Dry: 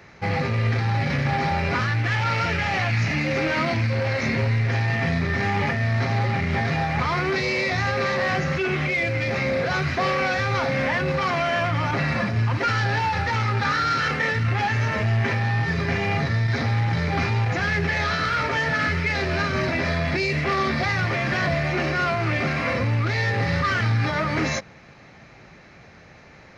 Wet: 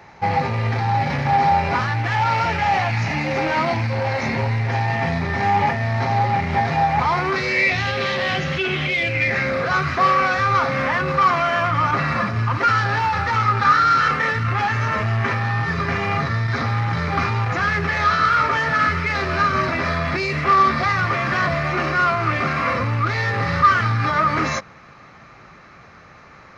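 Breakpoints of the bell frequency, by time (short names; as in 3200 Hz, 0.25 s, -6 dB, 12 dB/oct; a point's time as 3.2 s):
bell +12 dB 0.54 oct
7.21 s 860 Hz
7.82 s 3200 Hz
9.02 s 3200 Hz
9.58 s 1200 Hz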